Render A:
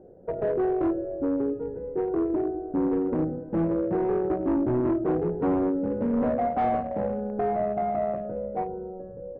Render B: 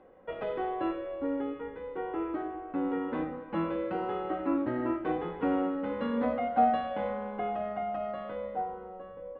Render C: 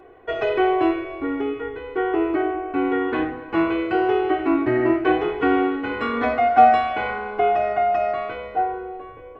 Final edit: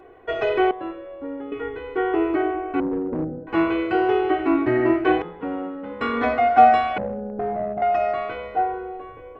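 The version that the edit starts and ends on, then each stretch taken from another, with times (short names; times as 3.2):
C
0.71–1.52 from B
2.8–3.47 from A
5.22–6.01 from B
6.98–7.82 from A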